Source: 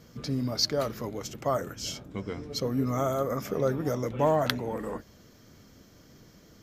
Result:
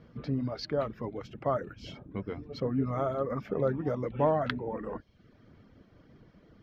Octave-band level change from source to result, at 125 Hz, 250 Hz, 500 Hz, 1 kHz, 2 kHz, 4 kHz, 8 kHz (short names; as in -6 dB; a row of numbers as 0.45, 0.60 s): -2.0 dB, -2.0 dB, -2.0 dB, -2.5 dB, -3.5 dB, -12.5 dB, under -20 dB